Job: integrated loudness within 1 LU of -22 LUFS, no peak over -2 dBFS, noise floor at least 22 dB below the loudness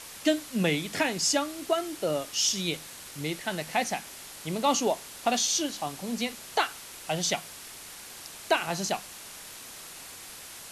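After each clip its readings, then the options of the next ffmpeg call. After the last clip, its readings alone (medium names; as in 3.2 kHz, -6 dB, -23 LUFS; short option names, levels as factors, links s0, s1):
noise floor -45 dBFS; noise floor target -51 dBFS; loudness -28.5 LUFS; peak level -12.5 dBFS; loudness target -22.0 LUFS
-> -af "afftdn=nr=6:nf=-45"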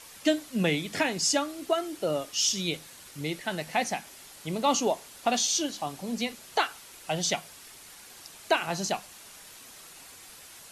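noise floor -49 dBFS; noise floor target -51 dBFS
-> -af "afftdn=nr=6:nf=-49"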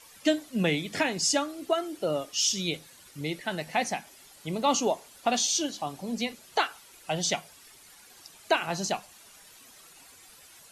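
noise floor -54 dBFS; loudness -29.0 LUFS; peak level -12.5 dBFS; loudness target -22.0 LUFS
-> -af "volume=2.24"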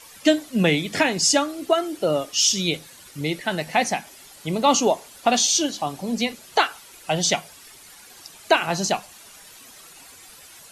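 loudness -22.0 LUFS; peak level -5.5 dBFS; noise floor -47 dBFS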